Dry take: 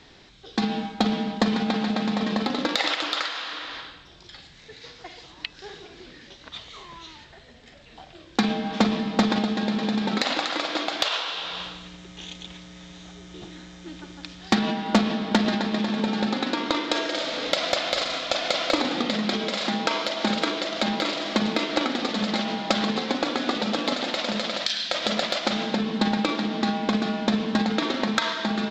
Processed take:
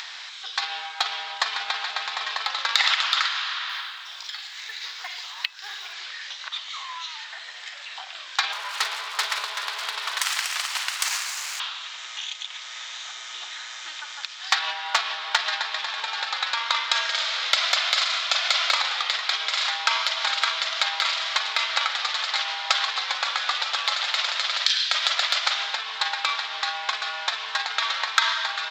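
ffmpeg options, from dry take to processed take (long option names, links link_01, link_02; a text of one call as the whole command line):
ffmpeg -i in.wav -filter_complex "[0:a]asettb=1/sr,asplit=3[link_01][link_02][link_03];[link_01]atrim=end=3.694[link_04];[link_02]atrim=start=3.69:end=5.93,asetpts=PTS-STARTPTS,afade=type=in:duration=0.004:curve=qsin,afade=type=out:start_time=2.236:duration=0.004:curve=qsin,acrusher=bits=7:mode=log:mix=0:aa=0.000001[link_05];[link_03]atrim=start=5.926[link_06];[link_04][link_05]acrossfade=duration=0.004:curve1=hsin:curve2=qsin[link_07];[link_07][link_06]acrossfade=duration=0.004:curve1=qsin:curve2=hsin,asettb=1/sr,asplit=3[link_08][link_09][link_10];[link_08]atrim=end=8.524[link_11];[link_09]atrim=start=8.52:end=11.6,asetpts=PTS-STARTPTS,afade=type=in:duration=0.004:curve=qsin,afade=type=out:start_time=3.076:duration=0.004:curve=qsin,aeval=exprs='abs(val(0))':channel_layout=same[link_12];[link_10]atrim=start=11.596[link_13];[link_11][link_12]acrossfade=duration=0.004:curve1=hsin:curve2=qsin[link_14];[link_14][link_13]acrossfade=duration=0.004:curve1=qsin:curve2=hsin,highpass=frequency=1000:width=0.5412,highpass=frequency=1000:width=1.3066,acompressor=mode=upward:threshold=-32dB:ratio=2.5,volume=5dB" out.wav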